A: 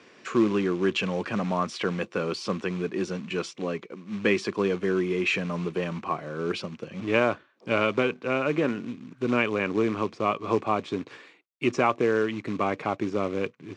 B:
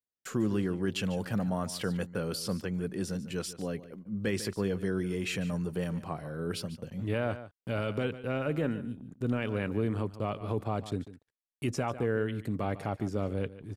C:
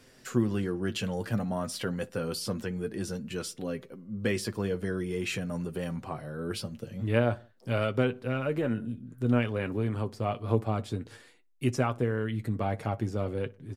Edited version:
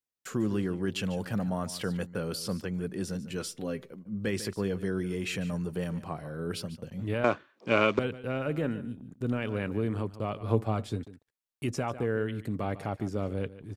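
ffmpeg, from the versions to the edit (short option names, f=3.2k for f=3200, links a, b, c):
-filter_complex "[2:a]asplit=2[a][b];[1:a]asplit=4[c][d][e][f];[c]atrim=end=3.372[g];[a]atrim=start=3.368:end=3.912[h];[d]atrim=start=3.908:end=7.242[i];[0:a]atrim=start=7.238:end=7.992[j];[e]atrim=start=7.988:end=10.432[k];[b]atrim=start=10.428:end=11.032[l];[f]atrim=start=11.028[m];[g][h]acrossfade=d=0.004:c1=hsin:c2=hsin[n];[n][i]acrossfade=d=0.004:c1=hsin:c2=hsin[o];[o][j]acrossfade=d=0.004:c1=hsin:c2=hsin[p];[p][k]acrossfade=d=0.004:c1=hsin:c2=hsin[q];[q][l]acrossfade=d=0.004:c1=hsin:c2=hsin[r];[r][m]acrossfade=d=0.004:c1=hsin:c2=hsin"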